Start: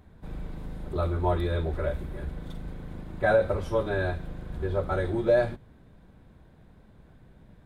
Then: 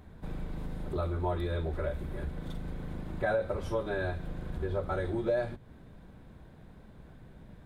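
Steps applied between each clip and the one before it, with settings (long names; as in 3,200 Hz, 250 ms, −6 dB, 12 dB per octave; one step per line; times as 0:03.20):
mains-hum notches 50/100 Hz
downward compressor 2 to 1, threshold −37 dBFS, peak gain reduction 11 dB
level +2.5 dB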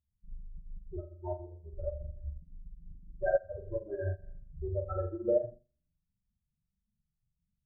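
expanding power law on the bin magnitudes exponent 3.8
flutter between parallel walls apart 7.2 metres, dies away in 0.64 s
expander for the loud parts 2.5 to 1, over −49 dBFS
level +3.5 dB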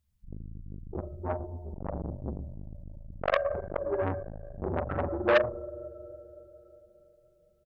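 repeating echo 112 ms, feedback 30%, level −15 dB
convolution reverb RT60 4.0 s, pre-delay 6 ms, DRR 13.5 dB
saturating transformer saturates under 1,600 Hz
level +8.5 dB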